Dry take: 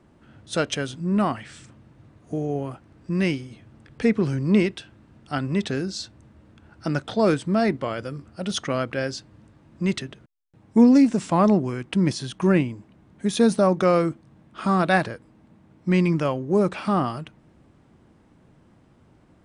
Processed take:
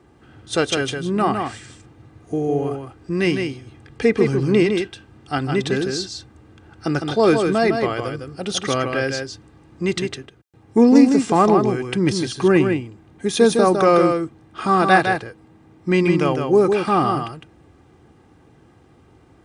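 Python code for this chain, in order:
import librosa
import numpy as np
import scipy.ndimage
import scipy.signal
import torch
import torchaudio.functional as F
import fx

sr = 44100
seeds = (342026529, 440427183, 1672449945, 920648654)

p1 = scipy.signal.sosfilt(scipy.signal.butter(2, 54.0, 'highpass', fs=sr, output='sos'), x)
p2 = p1 + 0.49 * np.pad(p1, (int(2.5 * sr / 1000.0), 0))[:len(p1)]
p3 = p2 + fx.echo_single(p2, sr, ms=157, db=-5.5, dry=0)
y = p3 * librosa.db_to_amplitude(4.0)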